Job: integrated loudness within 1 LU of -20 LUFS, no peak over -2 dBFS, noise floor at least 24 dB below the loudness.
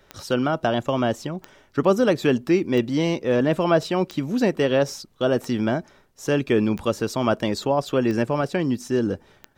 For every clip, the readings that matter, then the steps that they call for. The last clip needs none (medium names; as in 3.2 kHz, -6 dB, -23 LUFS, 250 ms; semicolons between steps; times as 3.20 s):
clicks found 8; loudness -22.5 LUFS; peak level -6.0 dBFS; loudness target -20.0 LUFS
-> de-click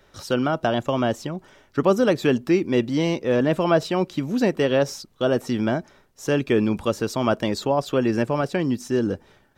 clicks found 0; loudness -22.5 LUFS; peak level -6.0 dBFS; loudness target -20.0 LUFS
-> trim +2.5 dB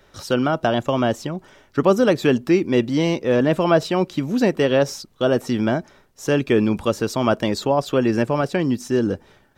loudness -20.5 LUFS; peak level -3.5 dBFS; noise floor -56 dBFS